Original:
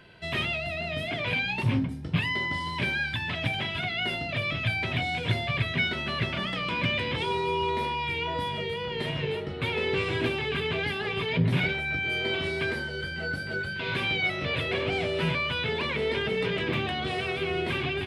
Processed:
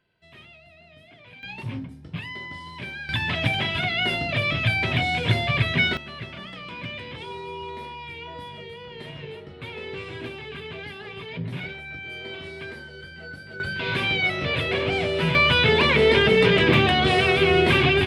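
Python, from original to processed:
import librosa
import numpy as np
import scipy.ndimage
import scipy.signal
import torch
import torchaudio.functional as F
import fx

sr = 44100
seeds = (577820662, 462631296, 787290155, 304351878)

y = fx.gain(x, sr, db=fx.steps((0.0, -19.0), (1.43, -7.0), (3.09, 5.5), (5.97, -7.5), (13.6, 4.0), (15.35, 11.0)))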